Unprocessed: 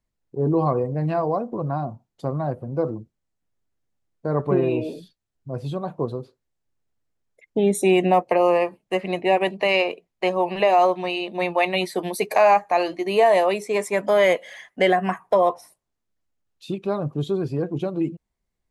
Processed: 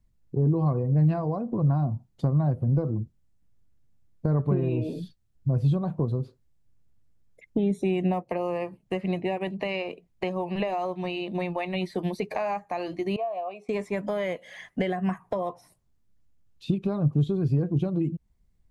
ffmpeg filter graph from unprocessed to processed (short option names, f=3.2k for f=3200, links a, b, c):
-filter_complex "[0:a]asettb=1/sr,asplit=3[a][b][c];[a]atrim=end=13.164[d];[b]atrim=start=13.16:end=13.69,asetpts=PTS-STARTPTS,afade=t=in:d=0.004:c=qsin,afade=t=out:st=0.526:d=0.004:c=qsin,asplit=3[e][f][g];[e]bandpass=f=730:t=q:w=8,volume=0dB[h];[f]bandpass=f=1.09k:t=q:w=8,volume=-6dB[i];[g]bandpass=f=2.44k:t=q:w=8,volume=-9dB[j];[h][i][j]amix=inputs=3:normalize=0,equalizer=f=76:w=0.59:g=5.5[k];[c]atrim=start=13.686[l];[d][k]acrossfade=d=0.004:c1=hsin:c2=qsin[m];[m][l]acrossfade=d=0.004:c1=qsin:c2=hsin,acompressor=threshold=-32dB:ratio=3,bass=f=250:g=15,treble=f=4k:g=1,acrossover=split=4700[n][o];[o]acompressor=threshold=-59dB:ratio=4:attack=1:release=60[p];[n][p]amix=inputs=2:normalize=0"